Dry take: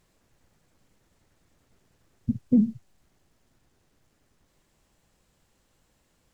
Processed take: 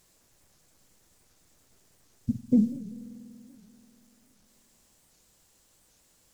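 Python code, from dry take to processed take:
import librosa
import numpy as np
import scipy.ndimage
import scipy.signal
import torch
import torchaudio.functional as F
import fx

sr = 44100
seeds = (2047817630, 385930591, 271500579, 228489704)

y = fx.bass_treble(x, sr, bass_db=-3, treble_db=11)
y = fx.rev_spring(y, sr, rt60_s=3.0, pass_ms=(48,), chirp_ms=50, drr_db=14.5)
y = fx.record_warp(y, sr, rpm=78.0, depth_cents=250.0)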